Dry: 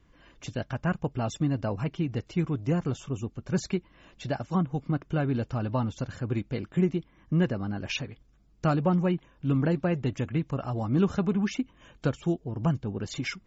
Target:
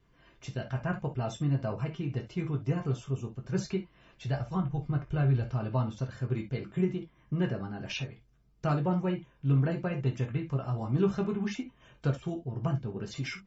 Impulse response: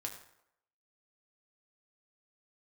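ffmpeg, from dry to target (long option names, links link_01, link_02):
-filter_complex "[1:a]atrim=start_sample=2205,atrim=end_sample=4410,asetrate=57330,aresample=44100[link_01];[0:a][link_01]afir=irnorm=-1:irlink=0,asplit=3[link_02][link_03][link_04];[link_02]afade=type=out:start_time=4.27:duration=0.02[link_05];[link_03]asubboost=boost=5:cutoff=99,afade=type=in:start_time=4.27:duration=0.02,afade=type=out:start_time=5.49:duration=0.02[link_06];[link_04]afade=type=in:start_time=5.49:duration=0.02[link_07];[link_05][link_06][link_07]amix=inputs=3:normalize=0,bandreject=frequency=6800:width=14"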